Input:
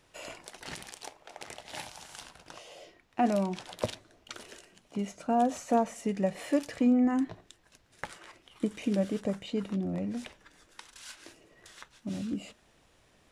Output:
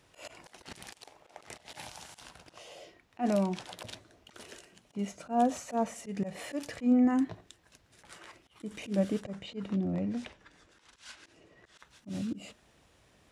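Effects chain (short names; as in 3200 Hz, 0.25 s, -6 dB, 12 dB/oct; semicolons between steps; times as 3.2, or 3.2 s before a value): HPF 51 Hz; low shelf 120 Hz +4.5 dB; auto swell 0.115 s; 9.24–11.79 air absorption 56 m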